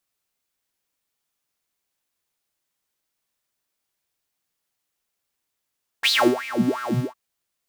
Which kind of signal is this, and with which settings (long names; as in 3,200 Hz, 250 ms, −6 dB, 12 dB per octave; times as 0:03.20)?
subtractive patch with filter wobble B3, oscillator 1 triangle, oscillator 2 saw, sub −0.5 dB, noise −21 dB, filter highpass, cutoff 370 Hz, Q 11, filter envelope 2 octaves, filter decay 0.74 s, filter sustain 15%, attack 27 ms, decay 0.29 s, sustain −17 dB, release 0.16 s, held 0.95 s, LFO 2.9 Hz, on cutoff 1.7 octaves